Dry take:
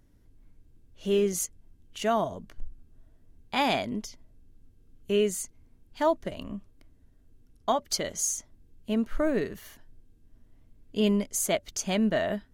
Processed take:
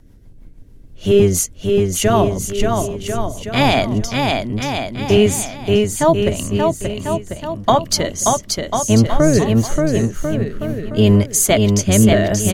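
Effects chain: octave divider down 1 oct, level 0 dB; rotary cabinet horn 6.3 Hz, later 0.8 Hz, at 2.70 s; bouncing-ball echo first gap 580 ms, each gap 0.8×, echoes 5; loudness maximiser +15 dB; trim -1 dB

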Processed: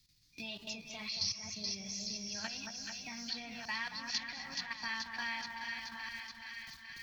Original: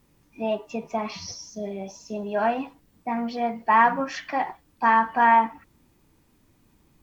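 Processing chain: chunks repeated in reverse 609 ms, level -7 dB; FFT filter 100 Hz 0 dB, 240 Hz -16 dB, 520 Hz -25 dB, 1.2 kHz -15 dB, 2.9 kHz -14 dB, 4.4 kHz +4 dB, 8.4 kHz -13 dB; gate with hold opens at -53 dBFS; level held to a coarse grid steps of 13 dB; resonant high shelf 1.6 kHz +10.5 dB, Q 1.5; two-band feedback delay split 1.7 kHz, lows 224 ms, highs 427 ms, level -7 dB; three bands compressed up and down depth 70%; trim -1 dB

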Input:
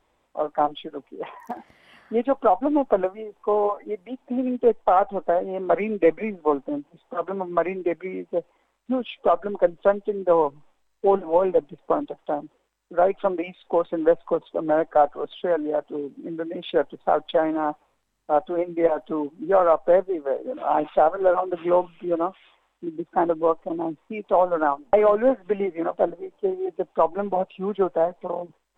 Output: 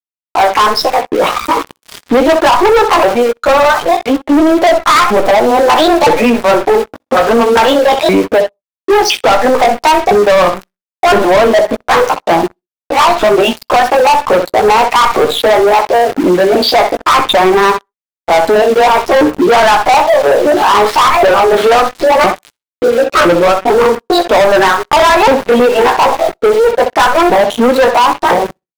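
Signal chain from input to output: sawtooth pitch modulation +10 st, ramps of 1011 ms; in parallel at +0.5 dB: compression 10:1, threshold -26 dBFS, peak gain reduction 13.5 dB; on the sum: small samples zeroed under -42 dBFS; doubling 17 ms -9.5 dB; on a send: flutter echo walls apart 10.9 m, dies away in 0.25 s; on the sum: waveshaping leveller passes 5; vibrato 1.1 Hz 17 cents; loudness maximiser +8 dB; trim -3.5 dB

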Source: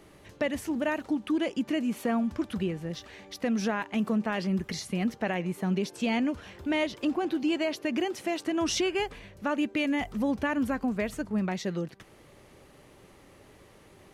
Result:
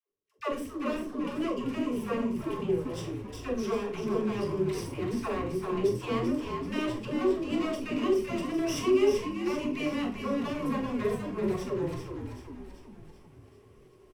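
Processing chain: comb filter that takes the minimum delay 0.37 ms; gate -46 dBFS, range -45 dB; reverse; upward compressor, threshold -30 dBFS; reverse; doubling 42 ms -8.5 dB; small resonant body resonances 430/1100 Hz, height 17 dB, ringing for 45 ms; phase dispersion lows, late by 111 ms, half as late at 460 Hz; frequency-shifting echo 387 ms, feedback 54%, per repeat -59 Hz, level -6.5 dB; on a send at -4 dB: reverberation, pre-delay 3 ms; on the sum: trim -8 dB

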